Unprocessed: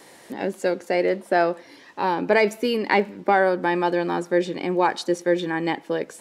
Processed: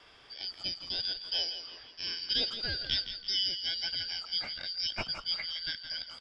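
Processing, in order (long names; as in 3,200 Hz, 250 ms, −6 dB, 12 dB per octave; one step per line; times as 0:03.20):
band-splitting scrambler in four parts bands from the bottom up 4321
low-pass filter 2,200 Hz 12 dB per octave
parametric band 180 Hz −4 dB 1 octave
echo with shifted repeats 166 ms, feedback 42%, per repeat −31 Hz, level −10 dB
0:04.73–0:05.61: multiband upward and downward expander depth 40%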